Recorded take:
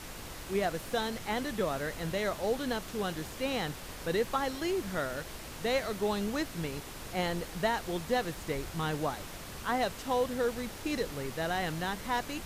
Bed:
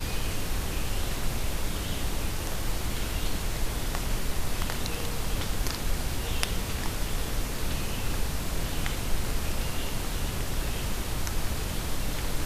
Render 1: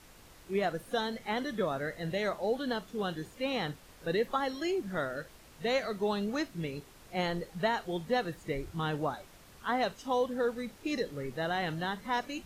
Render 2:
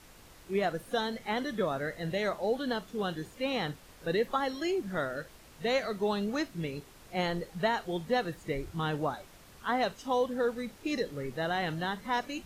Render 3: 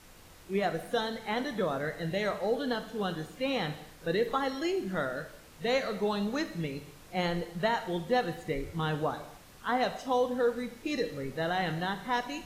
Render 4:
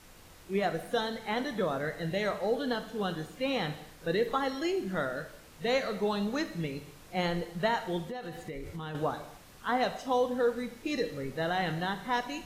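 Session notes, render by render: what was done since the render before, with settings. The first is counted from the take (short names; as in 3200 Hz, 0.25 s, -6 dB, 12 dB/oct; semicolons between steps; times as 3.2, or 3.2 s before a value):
noise print and reduce 12 dB
gain +1 dB
non-linear reverb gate 0.31 s falling, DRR 9 dB
8.05–8.95 compressor 8:1, threshold -35 dBFS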